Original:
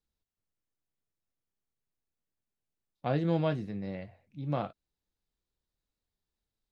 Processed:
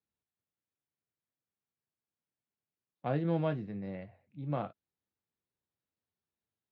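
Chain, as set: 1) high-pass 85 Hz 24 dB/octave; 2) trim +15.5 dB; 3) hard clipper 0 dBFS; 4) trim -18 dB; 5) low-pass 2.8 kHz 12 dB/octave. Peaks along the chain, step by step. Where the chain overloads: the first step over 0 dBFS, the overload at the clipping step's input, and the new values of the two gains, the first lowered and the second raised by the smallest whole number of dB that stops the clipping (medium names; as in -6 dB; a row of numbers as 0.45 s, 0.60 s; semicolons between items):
-17.0 dBFS, -1.5 dBFS, -1.5 dBFS, -19.5 dBFS, -19.5 dBFS; nothing clips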